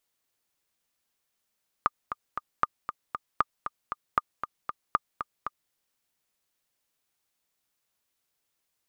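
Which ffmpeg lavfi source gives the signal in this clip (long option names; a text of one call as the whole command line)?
ffmpeg -f lavfi -i "aevalsrc='pow(10,(-8.5-9.5*gte(mod(t,3*60/233),60/233))/20)*sin(2*PI*1210*mod(t,60/233))*exp(-6.91*mod(t,60/233)/0.03)':duration=3.86:sample_rate=44100" out.wav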